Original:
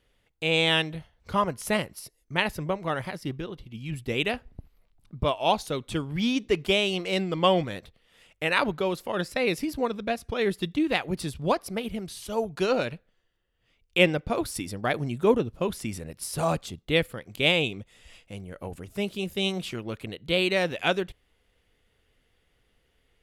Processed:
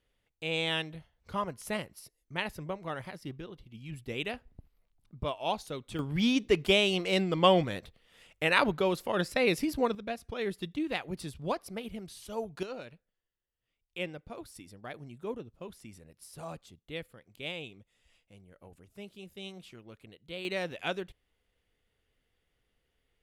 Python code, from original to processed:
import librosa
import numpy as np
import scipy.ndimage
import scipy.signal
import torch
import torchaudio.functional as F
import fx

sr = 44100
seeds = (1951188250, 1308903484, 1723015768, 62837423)

y = fx.gain(x, sr, db=fx.steps((0.0, -8.5), (5.99, -1.0), (9.95, -8.0), (12.63, -16.5), (20.45, -9.0)))